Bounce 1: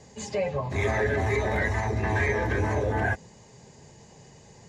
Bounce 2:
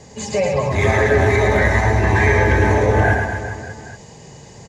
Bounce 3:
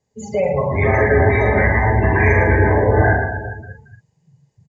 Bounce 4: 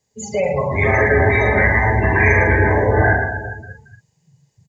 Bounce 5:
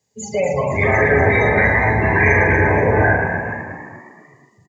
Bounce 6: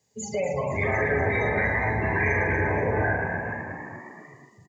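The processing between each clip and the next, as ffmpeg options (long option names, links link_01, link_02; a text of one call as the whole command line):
ffmpeg -i in.wav -af "aecho=1:1:110|242|400.4|590.5|818.6:0.631|0.398|0.251|0.158|0.1,volume=8.5dB" out.wav
ffmpeg -i in.wav -filter_complex "[0:a]afftdn=noise_reduction=32:noise_floor=-22,asplit=2[link_01][link_02];[link_02]adelay=43,volume=-6dB[link_03];[link_01][link_03]amix=inputs=2:normalize=0" out.wav
ffmpeg -i in.wav -af "highshelf=frequency=2100:gain=10.5,volume=-1.5dB" out.wav
ffmpeg -i in.wav -filter_complex "[0:a]highpass=79,asplit=6[link_01][link_02][link_03][link_04][link_05][link_06];[link_02]adelay=241,afreqshift=65,volume=-9.5dB[link_07];[link_03]adelay=482,afreqshift=130,volume=-16.4dB[link_08];[link_04]adelay=723,afreqshift=195,volume=-23.4dB[link_09];[link_05]adelay=964,afreqshift=260,volume=-30.3dB[link_10];[link_06]adelay=1205,afreqshift=325,volume=-37.2dB[link_11];[link_01][link_07][link_08][link_09][link_10][link_11]amix=inputs=6:normalize=0" out.wav
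ffmpeg -i in.wav -af "acompressor=threshold=-39dB:ratio=1.5" out.wav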